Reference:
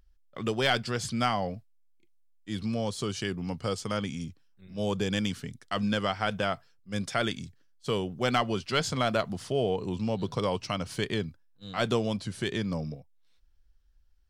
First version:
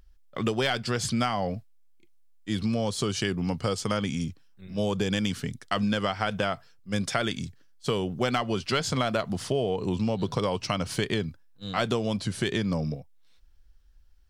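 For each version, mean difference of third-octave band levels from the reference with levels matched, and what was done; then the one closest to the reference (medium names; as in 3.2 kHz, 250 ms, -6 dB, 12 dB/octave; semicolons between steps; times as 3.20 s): 2.0 dB: compression, threshold -29 dBFS, peak gain reduction 9 dB; trim +6.5 dB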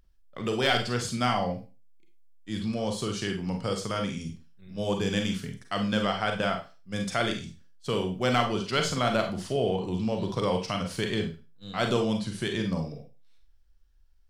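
3.5 dB: Schroeder reverb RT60 0.31 s, combs from 33 ms, DRR 3.5 dB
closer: first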